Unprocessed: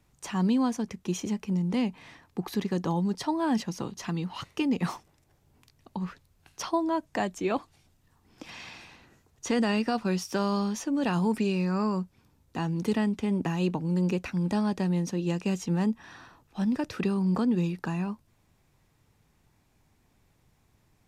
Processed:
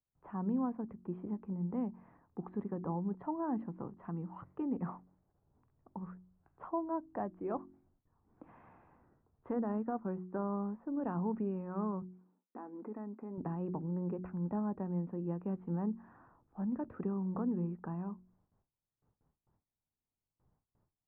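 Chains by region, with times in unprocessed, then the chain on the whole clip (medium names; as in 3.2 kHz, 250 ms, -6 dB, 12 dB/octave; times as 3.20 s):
9.53–11.00 s: low-pass 2 kHz + transient shaper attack 0 dB, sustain -4 dB
12.02–13.38 s: brick-wall FIR band-pass 200–2700 Hz + compression 2.5:1, threshold -33 dBFS
whole clip: de-hum 45.76 Hz, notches 8; gate with hold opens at -55 dBFS; inverse Chebyshev low-pass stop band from 5.5 kHz, stop band 70 dB; trim -8.5 dB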